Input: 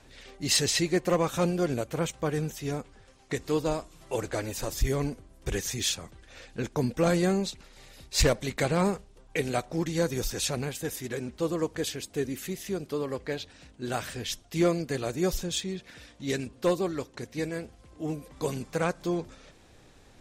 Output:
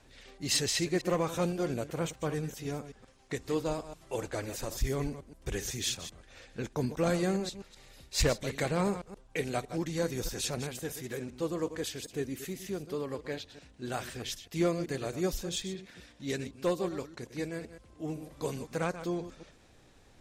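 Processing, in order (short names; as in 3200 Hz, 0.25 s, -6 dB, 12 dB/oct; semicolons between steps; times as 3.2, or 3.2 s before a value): reverse delay 0.127 s, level -11.5 dB; 18.11–18.51 flutter echo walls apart 7.6 m, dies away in 0.28 s; gain -4.5 dB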